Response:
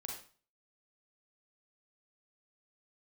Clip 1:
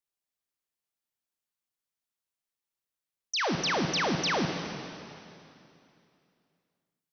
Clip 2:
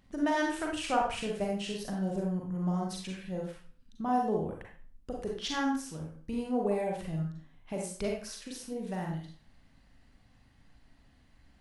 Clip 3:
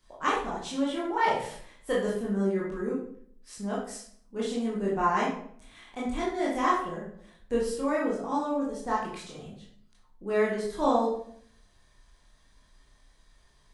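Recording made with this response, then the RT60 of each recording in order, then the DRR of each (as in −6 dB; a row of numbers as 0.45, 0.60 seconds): 2; 2.7, 0.40, 0.60 seconds; 3.5, −1.0, −6.5 decibels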